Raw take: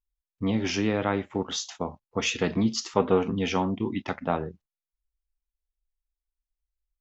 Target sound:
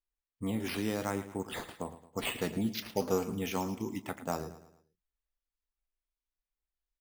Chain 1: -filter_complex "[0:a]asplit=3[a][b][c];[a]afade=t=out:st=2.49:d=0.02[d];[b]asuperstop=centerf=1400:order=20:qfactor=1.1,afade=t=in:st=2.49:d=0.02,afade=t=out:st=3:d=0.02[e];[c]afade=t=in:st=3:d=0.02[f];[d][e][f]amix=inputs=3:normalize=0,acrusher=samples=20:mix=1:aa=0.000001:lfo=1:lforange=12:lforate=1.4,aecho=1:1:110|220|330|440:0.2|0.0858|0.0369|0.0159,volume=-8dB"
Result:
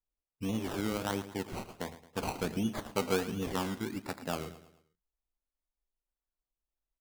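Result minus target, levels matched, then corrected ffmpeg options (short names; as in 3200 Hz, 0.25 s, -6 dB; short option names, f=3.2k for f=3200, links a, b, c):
decimation with a swept rate: distortion +7 dB
-filter_complex "[0:a]asplit=3[a][b][c];[a]afade=t=out:st=2.49:d=0.02[d];[b]asuperstop=centerf=1400:order=20:qfactor=1.1,afade=t=in:st=2.49:d=0.02,afade=t=out:st=3:d=0.02[e];[c]afade=t=in:st=3:d=0.02[f];[d][e][f]amix=inputs=3:normalize=0,acrusher=samples=6:mix=1:aa=0.000001:lfo=1:lforange=3.6:lforate=1.4,aecho=1:1:110|220|330|440:0.2|0.0858|0.0369|0.0159,volume=-8dB"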